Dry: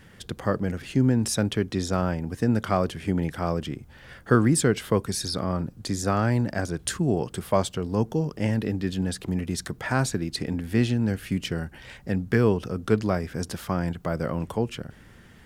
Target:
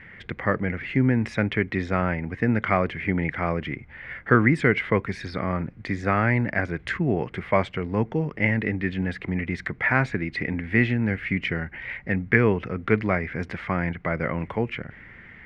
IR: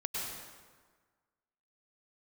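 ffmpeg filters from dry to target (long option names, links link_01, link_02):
-af "lowpass=frequency=2100:width_type=q:width=7.3"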